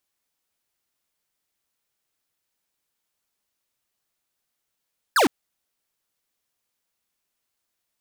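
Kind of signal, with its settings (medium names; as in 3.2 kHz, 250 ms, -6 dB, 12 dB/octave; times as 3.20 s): laser zap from 1.8 kHz, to 230 Hz, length 0.11 s square, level -17 dB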